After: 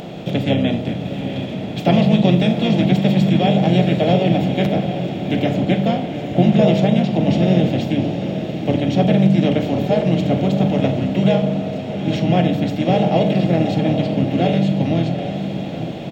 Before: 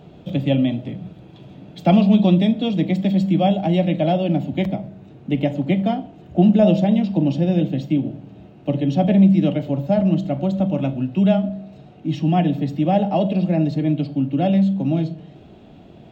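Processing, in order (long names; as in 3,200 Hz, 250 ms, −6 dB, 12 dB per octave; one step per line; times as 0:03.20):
compressor on every frequency bin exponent 0.6
high-shelf EQ 3,300 Hz +8.5 dB
mains-hum notches 50/100/150/200/250/300 Hz
feedback delay with all-pass diffusion 794 ms, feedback 44%, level −8 dB
pitch-shifted copies added −5 semitones −5 dB
level −3 dB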